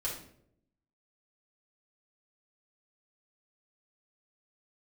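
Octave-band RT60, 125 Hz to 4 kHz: 0.95, 1.0, 0.85, 0.55, 0.50, 0.45 s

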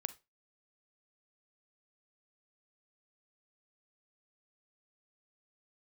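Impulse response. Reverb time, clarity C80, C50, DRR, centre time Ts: 0.25 s, 26.0 dB, 17.5 dB, 13.5 dB, 3 ms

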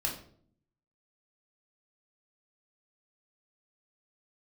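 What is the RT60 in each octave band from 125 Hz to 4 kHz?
0.95, 0.90, 0.65, 0.50, 0.40, 0.40 s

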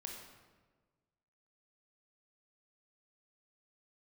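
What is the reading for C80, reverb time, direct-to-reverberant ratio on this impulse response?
4.5 dB, 1.4 s, 0.0 dB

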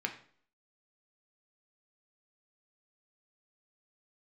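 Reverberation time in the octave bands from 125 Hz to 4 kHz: 0.50, 0.55, 0.55, 0.50, 0.45, 0.45 s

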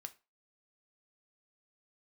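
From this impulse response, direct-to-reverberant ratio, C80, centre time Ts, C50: 8.0 dB, 25.5 dB, 4 ms, 19.0 dB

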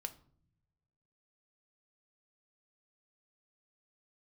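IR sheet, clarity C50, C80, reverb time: 16.0 dB, 21.0 dB, not exponential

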